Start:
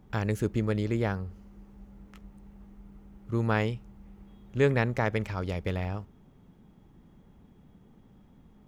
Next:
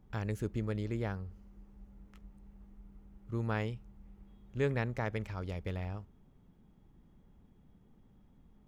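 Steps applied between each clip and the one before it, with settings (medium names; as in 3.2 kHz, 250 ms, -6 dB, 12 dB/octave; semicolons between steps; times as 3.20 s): bass shelf 64 Hz +8.5 dB; trim -8.5 dB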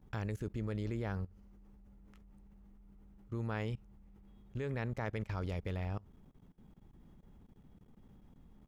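level held to a coarse grid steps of 21 dB; trim +5 dB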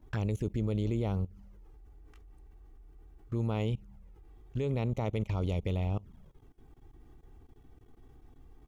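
touch-sensitive flanger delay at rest 3.3 ms, full sweep at -35 dBFS; trim +7 dB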